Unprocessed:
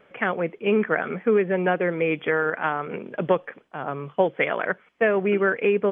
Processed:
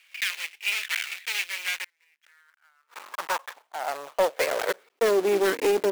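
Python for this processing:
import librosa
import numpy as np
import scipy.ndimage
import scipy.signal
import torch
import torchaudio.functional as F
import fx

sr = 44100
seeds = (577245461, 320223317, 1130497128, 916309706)

y = fx.block_float(x, sr, bits=3)
y = fx.gate_flip(y, sr, shuts_db=-21.0, range_db=-38, at=(1.84, 2.96))
y = np.maximum(y, 0.0)
y = fx.filter_sweep_highpass(y, sr, from_hz=2400.0, to_hz=310.0, start_s=1.62, end_s=5.46, q=3.0)
y = 10.0 ** (-14.5 / 20.0) * np.tanh(y / 10.0 ** (-14.5 / 20.0))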